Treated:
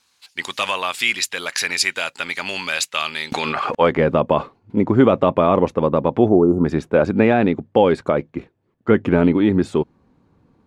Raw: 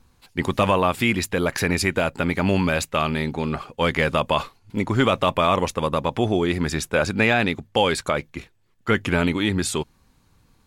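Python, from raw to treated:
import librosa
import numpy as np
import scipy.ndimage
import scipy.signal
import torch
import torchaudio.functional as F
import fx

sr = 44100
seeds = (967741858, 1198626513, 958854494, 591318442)

y = fx.spec_erase(x, sr, start_s=6.29, length_s=0.36, low_hz=1400.0, high_hz=5600.0)
y = fx.filter_sweep_bandpass(y, sr, from_hz=4800.0, to_hz=330.0, start_s=3.3, end_s=4.02, q=0.76)
y = fx.env_flatten(y, sr, amount_pct=100, at=(3.32, 3.75))
y = y * 10.0 ** (8.5 / 20.0)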